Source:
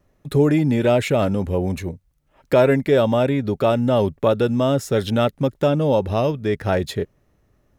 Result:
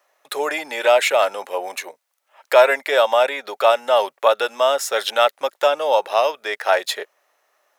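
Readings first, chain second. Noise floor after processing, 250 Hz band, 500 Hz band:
-74 dBFS, -21.0 dB, +1.0 dB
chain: high-pass 660 Hz 24 dB/octave; trim +8 dB

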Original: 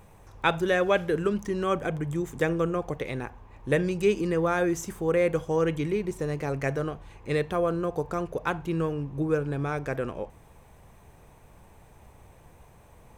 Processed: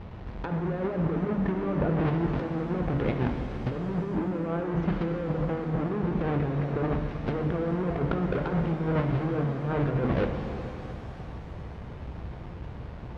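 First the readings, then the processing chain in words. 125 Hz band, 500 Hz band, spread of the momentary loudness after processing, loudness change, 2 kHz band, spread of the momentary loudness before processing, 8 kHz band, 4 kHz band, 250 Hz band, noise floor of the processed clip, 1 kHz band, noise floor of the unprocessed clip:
+4.5 dB, -4.5 dB, 14 LU, -1.0 dB, -7.0 dB, 8 LU, under -20 dB, -7.5 dB, +2.0 dB, -40 dBFS, -2.5 dB, -54 dBFS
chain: square wave that keeps the level; hum notches 50/100/150/200/250/300 Hz; low-pass that closes with the level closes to 1.6 kHz, closed at -22 dBFS; bass shelf 220 Hz +9.5 dB; compressor with a negative ratio -27 dBFS, ratio -1; high-pass 98 Hz 6 dB/octave; vibrato 2.6 Hz 78 cents; distance through air 290 m; pitch-shifted reverb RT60 2.9 s, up +7 st, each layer -8 dB, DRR 5.5 dB

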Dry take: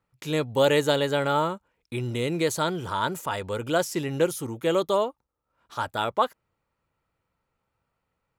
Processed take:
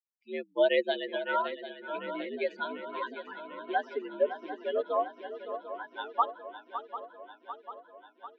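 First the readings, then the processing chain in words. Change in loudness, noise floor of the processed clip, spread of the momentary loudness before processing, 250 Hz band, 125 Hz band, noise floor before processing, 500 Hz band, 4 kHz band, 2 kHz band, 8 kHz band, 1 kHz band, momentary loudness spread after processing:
-7.0 dB, -67 dBFS, 9 LU, -11.0 dB, under -30 dB, -80 dBFS, -5.5 dB, -9.5 dB, -4.5 dB, under -40 dB, -5.0 dB, 16 LU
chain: expander on every frequency bin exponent 3; shuffle delay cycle 745 ms, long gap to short 3:1, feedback 61%, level -11 dB; mistuned SSB +72 Hz 210–3400 Hz

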